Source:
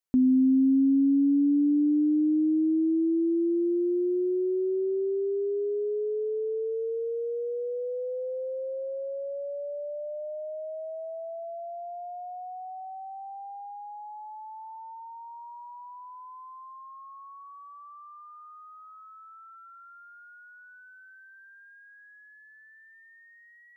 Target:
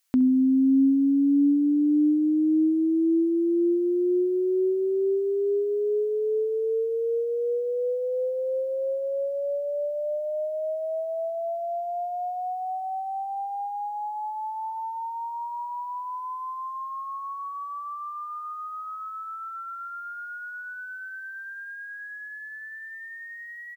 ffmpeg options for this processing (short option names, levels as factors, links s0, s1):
-filter_complex "[0:a]tiltshelf=f=740:g=-9.5,asplit=2[s0][s1];[s1]adelay=67,lowpass=f=2000:p=1,volume=0.126,asplit=2[s2][s3];[s3]adelay=67,lowpass=f=2000:p=1,volume=0.48,asplit=2[s4][s5];[s5]adelay=67,lowpass=f=2000:p=1,volume=0.48,asplit=2[s6][s7];[s7]adelay=67,lowpass=f=2000:p=1,volume=0.48[s8];[s2][s4][s6][s8]amix=inputs=4:normalize=0[s9];[s0][s9]amix=inputs=2:normalize=0,volume=2.66"